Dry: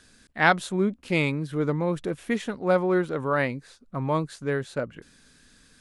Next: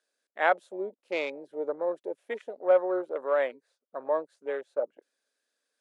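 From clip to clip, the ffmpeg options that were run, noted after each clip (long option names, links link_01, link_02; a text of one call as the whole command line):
ffmpeg -i in.wav -af "afwtdn=0.0251,highpass=frequency=370:width=0.5412,highpass=frequency=370:width=1.3066,equalizer=frequency=590:width_type=o:width=0.67:gain=10.5,volume=-7.5dB" out.wav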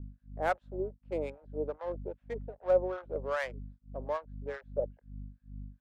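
ffmpeg -i in.wav -filter_complex "[0:a]adynamicsmooth=sensitivity=5.5:basefreq=1600,aeval=exprs='val(0)+0.01*(sin(2*PI*50*n/s)+sin(2*PI*2*50*n/s)/2+sin(2*PI*3*50*n/s)/3+sin(2*PI*4*50*n/s)/4+sin(2*PI*5*50*n/s)/5)':channel_layout=same,acrossover=split=730[link_01][link_02];[link_01]aeval=exprs='val(0)*(1-1/2+1/2*cos(2*PI*2.5*n/s))':channel_layout=same[link_03];[link_02]aeval=exprs='val(0)*(1-1/2-1/2*cos(2*PI*2.5*n/s))':channel_layout=same[link_04];[link_03][link_04]amix=inputs=2:normalize=0" out.wav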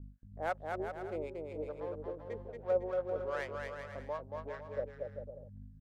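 ffmpeg -i in.wav -af "aecho=1:1:230|391|503.7|582.6|637.8:0.631|0.398|0.251|0.158|0.1,volume=-5.5dB" out.wav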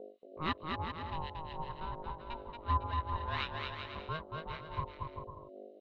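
ffmpeg -i in.wav -af "lowpass=frequency=3400:width_type=q:width=13,aeval=exprs='val(0)*sin(2*PI*470*n/s)':channel_layout=same,volume=2.5dB" out.wav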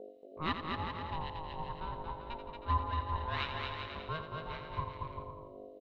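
ffmpeg -i in.wav -af "aecho=1:1:85|170|255|340|425|510:0.355|0.177|0.0887|0.0444|0.0222|0.0111" out.wav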